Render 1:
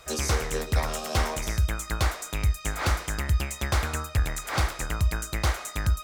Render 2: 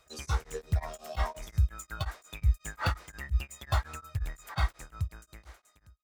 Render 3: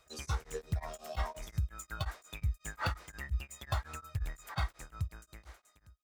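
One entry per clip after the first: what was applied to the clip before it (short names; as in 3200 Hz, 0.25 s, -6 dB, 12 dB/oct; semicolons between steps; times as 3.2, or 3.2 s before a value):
ending faded out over 1.44 s; spectral noise reduction 13 dB; beating tremolo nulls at 5.6 Hz
compressor 6:1, threshold -27 dBFS, peak gain reduction 8.5 dB; gain -2 dB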